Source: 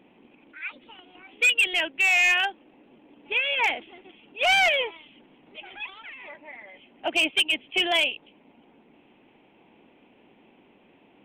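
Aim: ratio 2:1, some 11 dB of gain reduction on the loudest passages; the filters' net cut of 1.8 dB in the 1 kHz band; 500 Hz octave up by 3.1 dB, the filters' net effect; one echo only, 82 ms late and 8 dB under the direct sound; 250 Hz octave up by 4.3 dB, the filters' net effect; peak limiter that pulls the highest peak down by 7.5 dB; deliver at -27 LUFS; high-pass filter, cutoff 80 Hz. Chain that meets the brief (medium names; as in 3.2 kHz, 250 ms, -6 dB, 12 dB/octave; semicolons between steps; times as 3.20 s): high-pass 80 Hz; peaking EQ 250 Hz +3.5 dB; peaking EQ 500 Hz +6.5 dB; peaking EQ 1 kHz -7.5 dB; compression 2:1, threshold -39 dBFS; peak limiter -29 dBFS; delay 82 ms -8 dB; trim +10 dB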